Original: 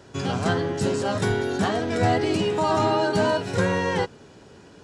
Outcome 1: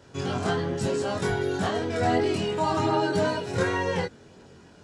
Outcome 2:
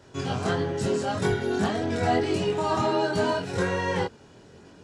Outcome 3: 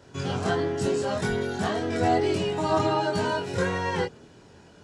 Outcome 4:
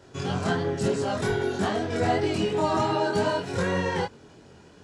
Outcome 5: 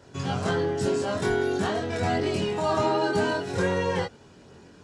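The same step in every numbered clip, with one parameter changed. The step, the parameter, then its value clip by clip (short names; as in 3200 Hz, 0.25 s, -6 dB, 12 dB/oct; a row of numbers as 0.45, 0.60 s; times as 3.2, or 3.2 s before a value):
chorus, rate: 0.68, 1.6, 0.36, 2.9, 0.22 Hz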